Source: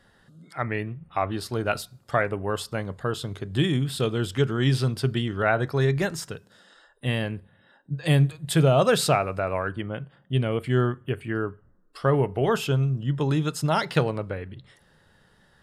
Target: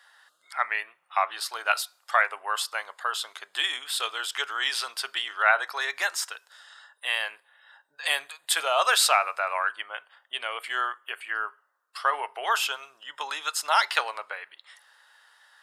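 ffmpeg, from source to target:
ffmpeg -i in.wav -af "highpass=frequency=870:width=0.5412,highpass=frequency=870:width=1.3066,volume=5.5dB" out.wav

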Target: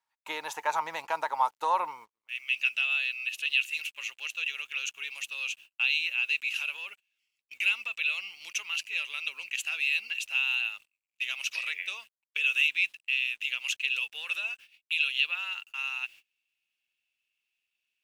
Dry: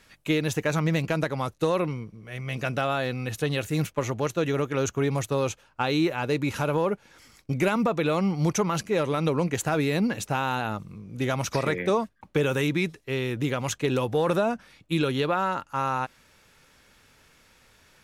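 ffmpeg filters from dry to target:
ffmpeg -i in.wav -af "asetnsamples=nb_out_samples=441:pad=0,asendcmd='2.28 highpass f 2700',highpass=frequency=900:width_type=q:width=11,acrusher=bits=8:mix=0:aa=0.5,agate=range=-26dB:threshold=-42dB:ratio=16:detection=peak,volume=-6.5dB" out.wav

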